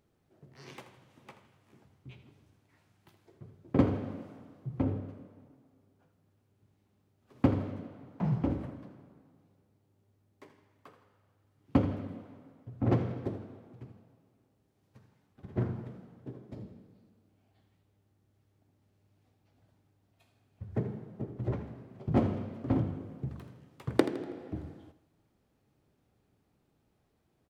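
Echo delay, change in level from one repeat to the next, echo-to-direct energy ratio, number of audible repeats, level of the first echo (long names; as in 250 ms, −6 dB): 81 ms, −8.0 dB, −12.0 dB, 3, −13.0 dB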